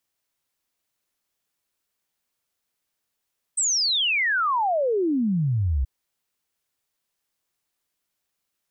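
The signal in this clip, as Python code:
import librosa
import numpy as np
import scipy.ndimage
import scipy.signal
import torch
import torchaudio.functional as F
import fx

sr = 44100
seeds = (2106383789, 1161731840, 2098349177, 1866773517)

y = fx.ess(sr, length_s=2.28, from_hz=8400.0, to_hz=61.0, level_db=-19.5)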